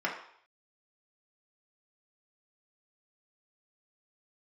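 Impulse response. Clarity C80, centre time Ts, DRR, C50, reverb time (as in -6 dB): 9.5 dB, 28 ms, -3.5 dB, 6.5 dB, 0.60 s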